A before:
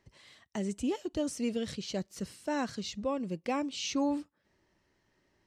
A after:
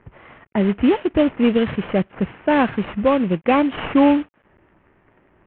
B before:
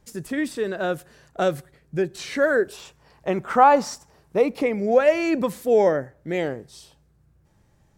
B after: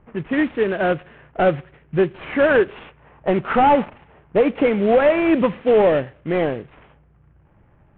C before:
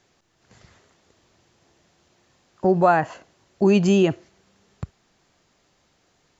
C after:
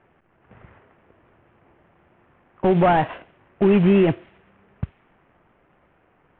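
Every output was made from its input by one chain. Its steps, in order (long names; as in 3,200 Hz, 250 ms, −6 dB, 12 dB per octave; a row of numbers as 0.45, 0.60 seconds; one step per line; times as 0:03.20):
variable-slope delta modulation 16 kbit/s
brickwall limiter −13.5 dBFS
low-pass that shuts in the quiet parts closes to 1,500 Hz, open at −23 dBFS
loudness normalisation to −19 LKFS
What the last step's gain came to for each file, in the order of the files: +16.5, +6.5, +5.5 decibels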